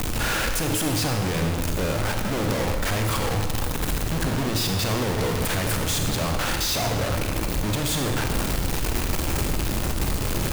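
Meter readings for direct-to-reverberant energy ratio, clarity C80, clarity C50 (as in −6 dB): 3.5 dB, 6.5 dB, 5.0 dB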